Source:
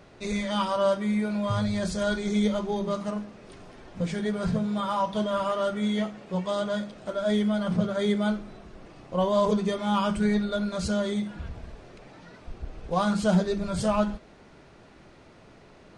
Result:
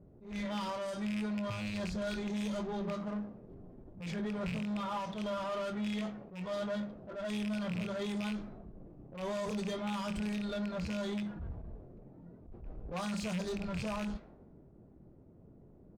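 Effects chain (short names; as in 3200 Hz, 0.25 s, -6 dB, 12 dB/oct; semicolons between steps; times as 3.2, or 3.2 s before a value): rattling part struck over -27 dBFS, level -17 dBFS; low-pass opened by the level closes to 350 Hz, open at -19.5 dBFS; tone controls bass +3 dB, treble +10 dB; limiter -20.5 dBFS, peak gain reduction 11 dB; soft clip -28 dBFS, distortion -13 dB; added harmonics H 6 -27 dB, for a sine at -28 dBFS; doubler 23 ms -12 dB; attack slew limiter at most 120 dB/s; gain -4.5 dB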